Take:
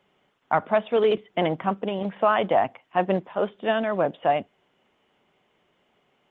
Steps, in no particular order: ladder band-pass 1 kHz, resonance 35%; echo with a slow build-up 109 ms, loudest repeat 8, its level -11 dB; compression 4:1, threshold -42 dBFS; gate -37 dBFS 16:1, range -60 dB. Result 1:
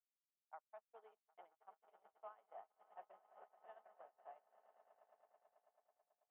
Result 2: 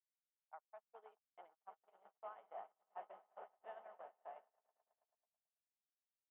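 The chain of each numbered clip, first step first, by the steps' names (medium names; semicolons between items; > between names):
echo with a slow build-up > compression > gate > ladder band-pass; compression > echo with a slow build-up > gate > ladder band-pass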